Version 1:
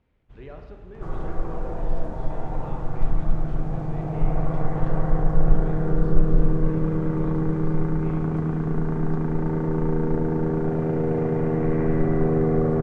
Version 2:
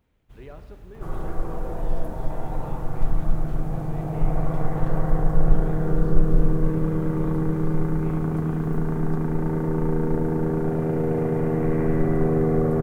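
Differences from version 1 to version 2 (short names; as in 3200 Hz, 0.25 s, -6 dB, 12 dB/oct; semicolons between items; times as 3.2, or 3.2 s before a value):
speech: send -6.0 dB; first sound: add high shelf 3700 Hz +7.5 dB; master: remove Bessel low-pass 5300 Hz, order 4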